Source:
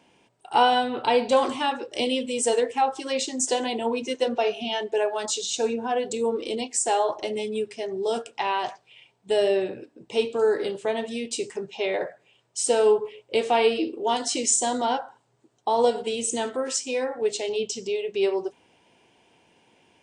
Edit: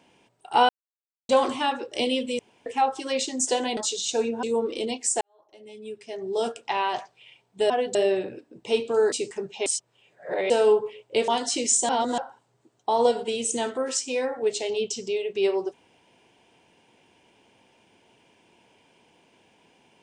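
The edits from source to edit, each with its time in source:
0.69–1.29 s: mute
2.39–2.66 s: room tone
3.77–5.22 s: delete
5.88–6.13 s: move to 9.40 s
6.91–8.10 s: fade in quadratic
10.57–11.31 s: delete
11.85–12.69 s: reverse
13.47–14.07 s: delete
14.68–14.97 s: reverse

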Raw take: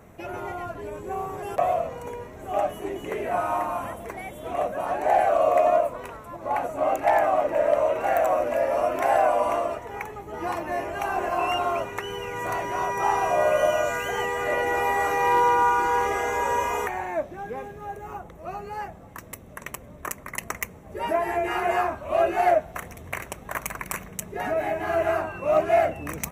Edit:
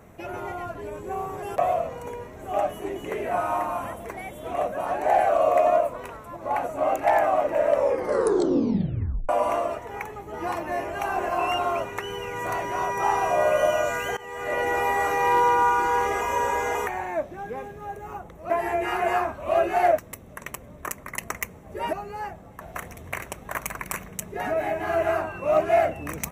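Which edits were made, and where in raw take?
7.70 s: tape stop 1.59 s
14.17–14.63 s: fade in, from -21.5 dB
16.21–16.75 s: reverse
18.50–19.18 s: swap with 21.13–22.61 s

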